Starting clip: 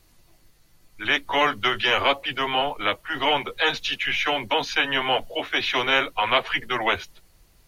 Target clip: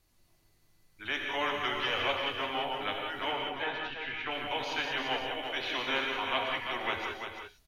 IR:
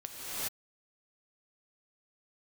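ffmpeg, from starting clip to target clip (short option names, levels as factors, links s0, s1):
-filter_complex "[0:a]asettb=1/sr,asplit=3[s0][s1][s2];[s0]atrim=end=3.314[s3];[s1]atrim=start=3.31:end=4.31,asetpts=PTS-STARTPTS,afade=t=in:d=0.004:c=qsin,afade=t=out:st=0.996:d=0.004:c=qsin,lowpass=2300[s4];[s2]atrim=start=4.306[s5];[s3][s4]acrossfade=d=0.004:c1=hsin:c2=qsin[s6];[s6][s5]acrossfade=d=0.004:c1=qsin:c2=hsin,aecho=1:1:341:0.447[s7];[1:a]atrim=start_sample=2205,afade=t=out:st=0.25:d=0.01,atrim=end_sample=11466[s8];[s7][s8]afir=irnorm=-1:irlink=0,volume=0.398"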